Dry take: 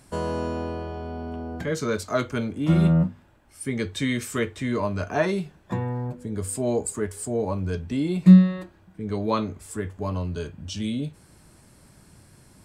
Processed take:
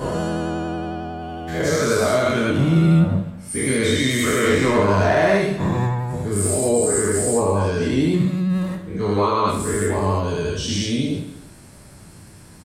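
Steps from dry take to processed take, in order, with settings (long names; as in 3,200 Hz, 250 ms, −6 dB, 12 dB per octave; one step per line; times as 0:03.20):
every bin's largest magnitude spread in time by 240 ms
brickwall limiter −13.5 dBFS, peak gain reduction 11 dB
0:04.43–0:05.37: leveller curve on the samples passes 1
reverse bouncing-ball delay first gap 30 ms, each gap 1.4×, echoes 5
pitch vibrato 11 Hz 35 cents
level +1 dB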